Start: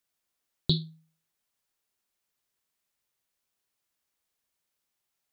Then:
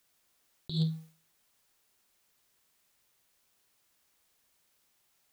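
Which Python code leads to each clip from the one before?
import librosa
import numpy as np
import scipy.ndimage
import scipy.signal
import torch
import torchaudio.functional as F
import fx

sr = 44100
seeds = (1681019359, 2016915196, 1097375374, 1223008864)

y = fx.over_compress(x, sr, threshold_db=-38.0, ratio=-1.0)
y = fx.leveller(y, sr, passes=1)
y = y * librosa.db_to_amplitude(4.0)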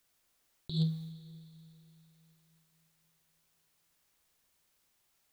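y = fx.low_shelf(x, sr, hz=95.0, db=6.0)
y = fx.rev_schroeder(y, sr, rt60_s=3.5, comb_ms=33, drr_db=13.5)
y = y * librosa.db_to_amplitude(-2.5)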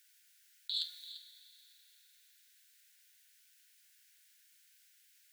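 y = fx.brickwall_highpass(x, sr, low_hz=1400.0)
y = y + 10.0 ** (-14.0 / 20.0) * np.pad(y, (int(342 * sr / 1000.0), 0))[:len(y)]
y = y * librosa.db_to_amplitude(8.0)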